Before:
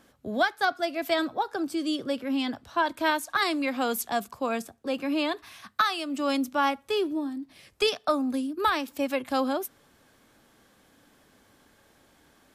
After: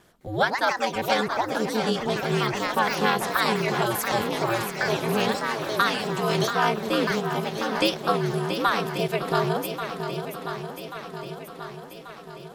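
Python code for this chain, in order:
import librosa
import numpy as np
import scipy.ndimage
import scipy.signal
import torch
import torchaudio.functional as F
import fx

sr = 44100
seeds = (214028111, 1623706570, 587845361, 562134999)

y = fx.echo_pitch(x, sr, ms=209, semitones=4, count=3, db_per_echo=-6.0)
y = y * np.sin(2.0 * np.pi * 110.0 * np.arange(len(y)) / sr)
y = fx.echo_swing(y, sr, ms=1136, ratio=1.5, feedback_pct=54, wet_db=-8.5)
y = F.gain(torch.from_numpy(y), 4.5).numpy()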